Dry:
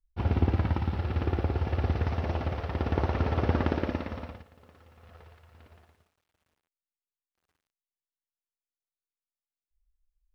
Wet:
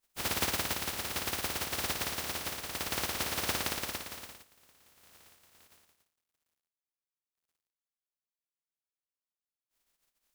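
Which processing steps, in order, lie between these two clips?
compressing power law on the bin magnitudes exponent 0.17
level −7 dB

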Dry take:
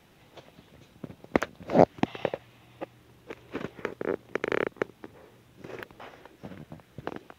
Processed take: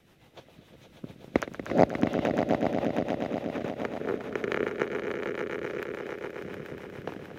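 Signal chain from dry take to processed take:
echo that builds up and dies away 119 ms, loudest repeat 5, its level −8 dB
rotating-speaker cabinet horn 7 Hz

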